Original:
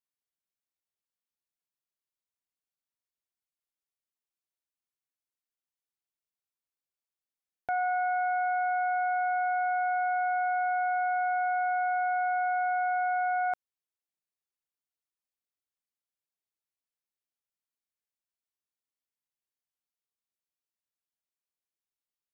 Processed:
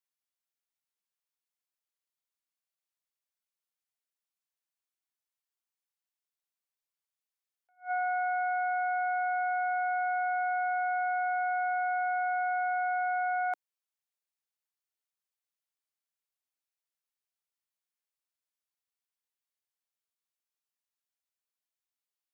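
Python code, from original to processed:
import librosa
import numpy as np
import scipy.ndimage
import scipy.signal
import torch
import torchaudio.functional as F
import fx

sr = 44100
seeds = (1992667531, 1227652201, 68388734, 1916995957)

y = scipy.signal.sosfilt(scipy.signal.bessel(8, 630.0, 'highpass', norm='mag', fs=sr, output='sos'), x)
y = fx.attack_slew(y, sr, db_per_s=270.0)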